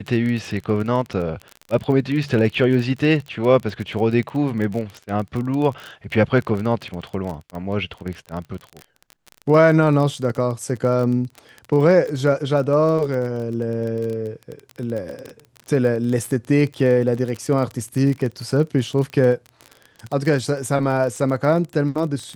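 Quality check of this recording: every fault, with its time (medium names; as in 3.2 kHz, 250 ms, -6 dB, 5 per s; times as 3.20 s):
crackle 25 per s -25 dBFS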